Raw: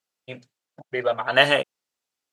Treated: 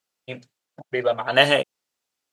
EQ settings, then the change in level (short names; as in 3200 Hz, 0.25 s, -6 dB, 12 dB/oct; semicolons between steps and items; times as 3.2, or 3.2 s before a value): dynamic EQ 1400 Hz, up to -5 dB, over -32 dBFS, Q 0.84; +3.0 dB